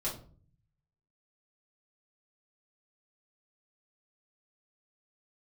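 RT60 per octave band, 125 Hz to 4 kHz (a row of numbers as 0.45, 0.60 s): 1.2, 0.80, 0.50, 0.40, 0.30, 0.30 s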